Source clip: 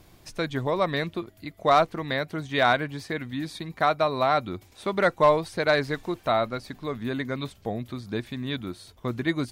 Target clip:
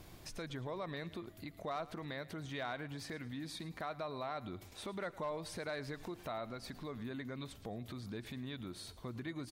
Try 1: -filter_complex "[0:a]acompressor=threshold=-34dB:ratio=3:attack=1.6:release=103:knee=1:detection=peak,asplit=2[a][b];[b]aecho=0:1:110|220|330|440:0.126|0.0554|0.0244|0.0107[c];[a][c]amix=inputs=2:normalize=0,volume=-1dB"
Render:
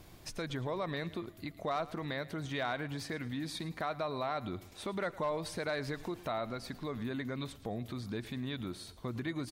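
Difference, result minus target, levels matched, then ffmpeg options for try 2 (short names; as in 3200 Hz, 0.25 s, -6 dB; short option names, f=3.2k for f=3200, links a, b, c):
compressor: peak gain reduction -5.5 dB
-filter_complex "[0:a]acompressor=threshold=-42.5dB:ratio=3:attack=1.6:release=103:knee=1:detection=peak,asplit=2[a][b];[b]aecho=0:1:110|220|330|440:0.126|0.0554|0.0244|0.0107[c];[a][c]amix=inputs=2:normalize=0,volume=-1dB"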